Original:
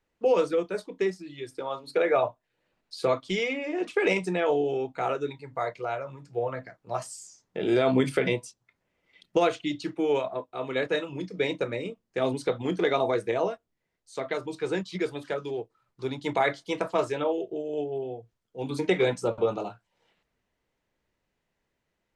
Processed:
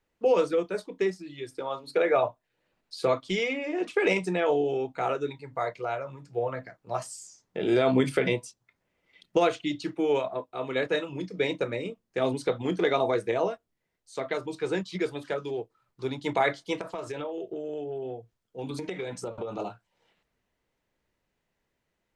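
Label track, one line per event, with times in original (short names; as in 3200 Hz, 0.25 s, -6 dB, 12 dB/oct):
16.790000	19.590000	compressor 12:1, threshold -30 dBFS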